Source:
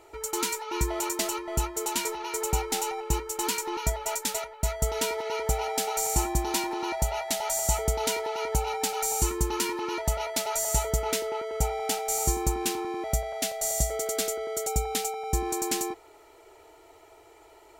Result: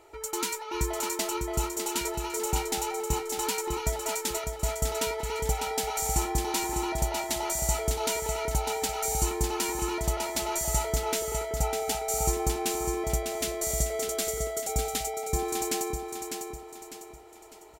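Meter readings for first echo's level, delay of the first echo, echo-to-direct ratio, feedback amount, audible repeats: -6.0 dB, 601 ms, -5.5 dB, 39%, 4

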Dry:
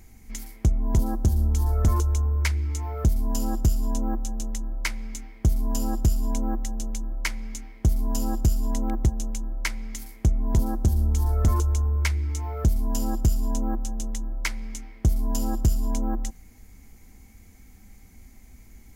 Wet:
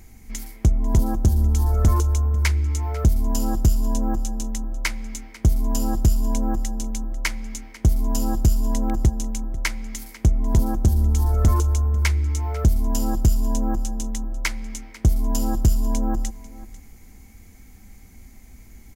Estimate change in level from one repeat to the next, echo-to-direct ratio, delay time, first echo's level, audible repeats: no regular repeats, -18.5 dB, 495 ms, -18.5 dB, 1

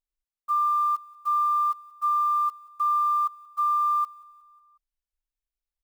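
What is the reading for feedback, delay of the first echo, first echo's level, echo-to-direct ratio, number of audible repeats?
54%, 182 ms, -21.0 dB, -19.5 dB, 3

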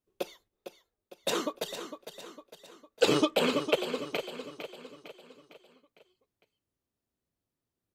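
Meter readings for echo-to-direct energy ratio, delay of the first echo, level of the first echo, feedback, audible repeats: -9.0 dB, 455 ms, -10.0 dB, 48%, 4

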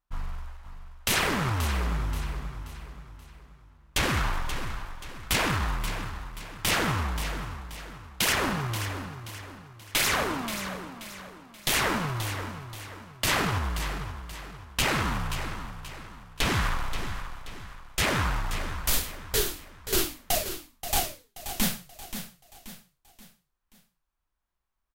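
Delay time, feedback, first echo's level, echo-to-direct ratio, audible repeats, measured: 530 ms, 41%, -10.5 dB, -9.5 dB, 4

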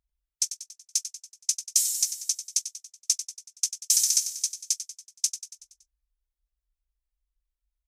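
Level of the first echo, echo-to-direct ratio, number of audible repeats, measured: -11.0 dB, -9.5 dB, 5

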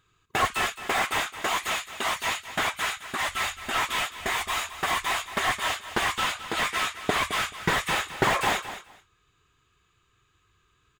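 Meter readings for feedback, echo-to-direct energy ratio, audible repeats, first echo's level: 17%, -12.5 dB, 2, -12.5 dB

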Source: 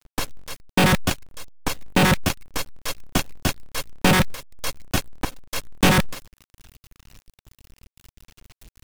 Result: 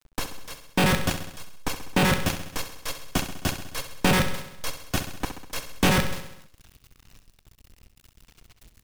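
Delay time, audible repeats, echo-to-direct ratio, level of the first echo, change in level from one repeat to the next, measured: 66 ms, 6, -7.5 dB, -9.5 dB, -4.5 dB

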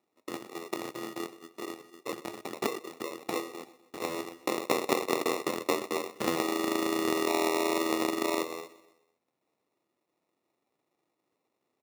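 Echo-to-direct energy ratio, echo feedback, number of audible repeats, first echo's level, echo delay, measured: -18.0 dB, 53%, 3, -19.5 dB, 126 ms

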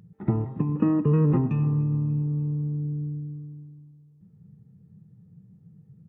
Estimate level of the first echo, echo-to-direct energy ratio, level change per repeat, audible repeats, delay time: -20.5 dB, -19.5 dB, -7.5 dB, 2, 294 ms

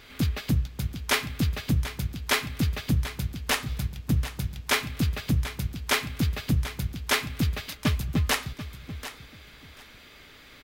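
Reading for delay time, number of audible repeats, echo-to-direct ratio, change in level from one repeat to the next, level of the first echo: 738 ms, 2, -13.0 dB, -14.5 dB, -13.0 dB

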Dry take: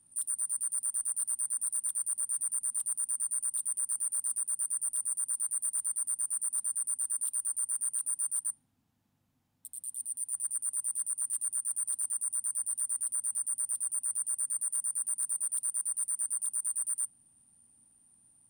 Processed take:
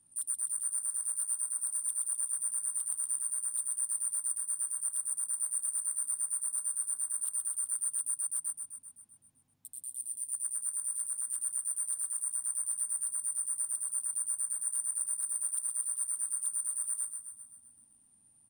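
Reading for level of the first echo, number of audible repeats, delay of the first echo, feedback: -8.0 dB, 7, 129 ms, 60%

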